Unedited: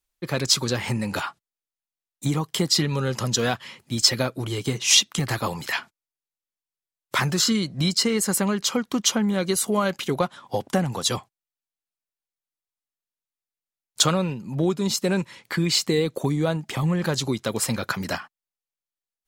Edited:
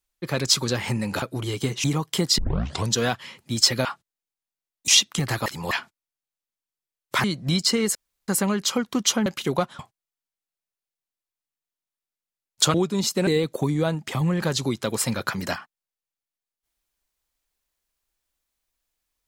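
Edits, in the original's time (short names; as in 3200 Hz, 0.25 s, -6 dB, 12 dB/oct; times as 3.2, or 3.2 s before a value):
1.22–2.25 swap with 4.26–4.88
2.79 tape start 0.53 s
5.46–5.71 reverse
7.24–7.56 cut
8.27 insert room tone 0.33 s
9.25–9.88 cut
10.41–11.17 cut
14.12–14.61 cut
15.14–15.89 cut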